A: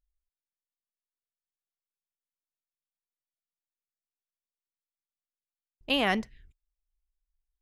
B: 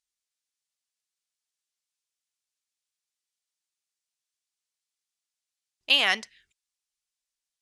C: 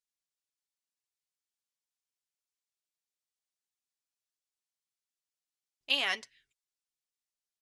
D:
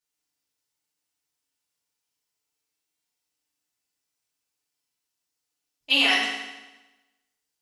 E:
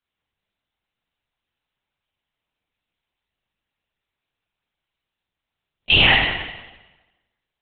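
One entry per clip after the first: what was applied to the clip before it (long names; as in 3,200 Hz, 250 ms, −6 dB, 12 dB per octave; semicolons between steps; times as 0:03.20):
meter weighting curve ITU-R 468
comb filter 7.2 ms, depth 50%; level −8.5 dB
feedback delay network reverb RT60 1.1 s, low-frequency decay 1.05×, high-frequency decay 0.95×, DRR −8.5 dB; level +1 dB
linear-prediction vocoder at 8 kHz whisper; level +6.5 dB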